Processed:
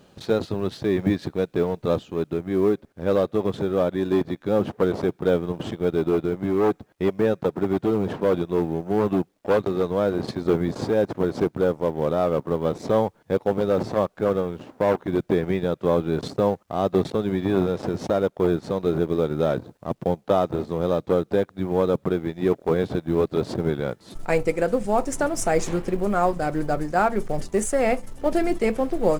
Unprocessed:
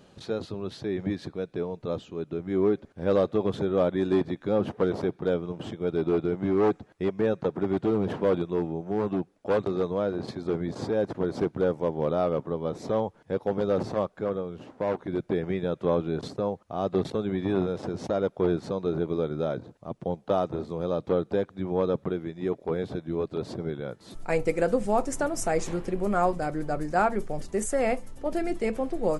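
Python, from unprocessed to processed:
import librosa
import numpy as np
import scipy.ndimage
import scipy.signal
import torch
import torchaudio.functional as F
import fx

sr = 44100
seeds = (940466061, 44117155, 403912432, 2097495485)

y = fx.law_mismatch(x, sr, coded='A')
y = fx.rider(y, sr, range_db=4, speed_s=0.5)
y = F.gain(torch.from_numpy(y), 5.5).numpy()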